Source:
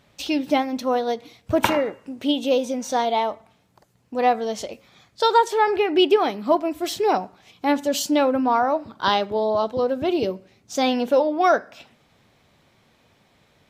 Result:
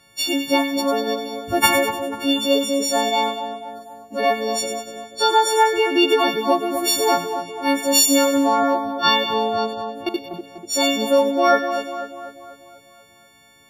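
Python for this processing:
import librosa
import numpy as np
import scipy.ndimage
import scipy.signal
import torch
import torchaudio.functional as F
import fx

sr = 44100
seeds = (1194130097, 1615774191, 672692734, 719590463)

y = fx.freq_snap(x, sr, grid_st=4)
y = fx.level_steps(y, sr, step_db=19, at=(9.73, 10.34))
y = fx.echo_split(y, sr, split_hz=1500.0, low_ms=245, high_ms=98, feedback_pct=52, wet_db=-8)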